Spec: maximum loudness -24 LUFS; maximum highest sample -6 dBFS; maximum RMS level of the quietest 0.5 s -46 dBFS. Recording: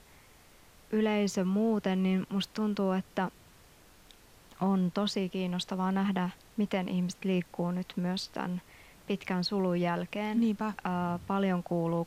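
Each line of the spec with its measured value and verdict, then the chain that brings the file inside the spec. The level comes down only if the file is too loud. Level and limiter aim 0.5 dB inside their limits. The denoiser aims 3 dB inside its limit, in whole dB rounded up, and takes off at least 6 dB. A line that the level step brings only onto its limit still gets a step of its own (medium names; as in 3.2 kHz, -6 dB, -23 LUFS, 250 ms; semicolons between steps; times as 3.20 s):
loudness -31.5 LUFS: pass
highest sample -16.5 dBFS: pass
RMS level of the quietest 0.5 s -58 dBFS: pass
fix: none needed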